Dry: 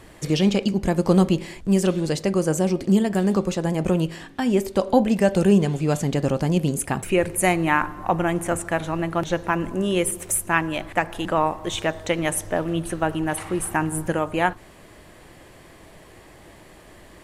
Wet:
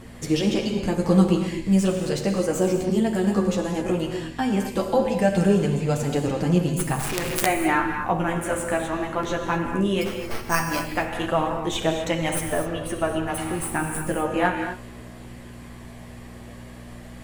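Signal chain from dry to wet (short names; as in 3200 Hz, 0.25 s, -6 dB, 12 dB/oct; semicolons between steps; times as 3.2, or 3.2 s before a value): tracing distortion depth 0.052 ms; in parallel at -2.5 dB: compressor 6:1, threshold -27 dBFS, peak gain reduction 15.5 dB; on the sum: chorus voices 2, 0.17 Hz, delay 11 ms, depth 5 ms; buzz 60 Hz, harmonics 4, -44 dBFS -1 dB/oct; 10.01–10.89 careless resampling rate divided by 6×, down filtered, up hold; non-linear reverb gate 0.28 s flat, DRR 3.5 dB; 6.99–7.46 companded quantiser 2-bit; gain -1.5 dB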